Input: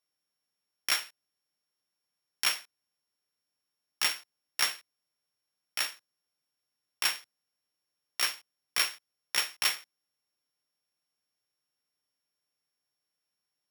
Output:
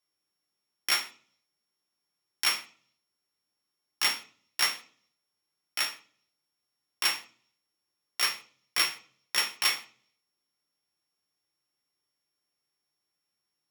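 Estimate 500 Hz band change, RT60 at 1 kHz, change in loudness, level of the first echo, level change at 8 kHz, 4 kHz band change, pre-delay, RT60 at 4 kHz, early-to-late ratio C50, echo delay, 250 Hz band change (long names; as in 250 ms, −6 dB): +2.0 dB, 0.40 s, +2.0 dB, no echo audible, +1.0 dB, +2.5 dB, 3 ms, 0.45 s, 14.0 dB, no echo audible, +5.0 dB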